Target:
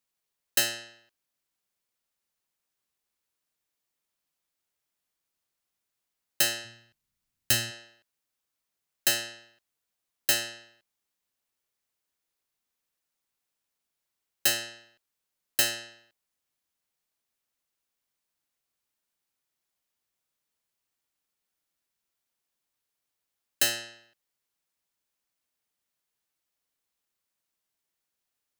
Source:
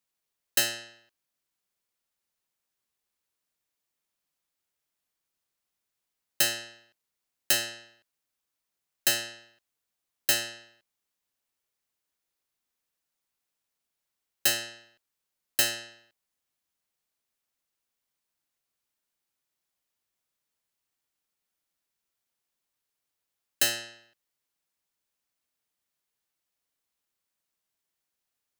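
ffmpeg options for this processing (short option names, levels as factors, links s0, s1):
-filter_complex "[0:a]asplit=3[s0][s1][s2];[s0]afade=t=out:st=6.64:d=0.02[s3];[s1]asubboost=boost=6.5:cutoff=180,afade=t=in:st=6.64:d=0.02,afade=t=out:st=7.7:d=0.02[s4];[s2]afade=t=in:st=7.7:d=0.02[s5];[s3][s4][s5]amix=inputs=3:normalize=0"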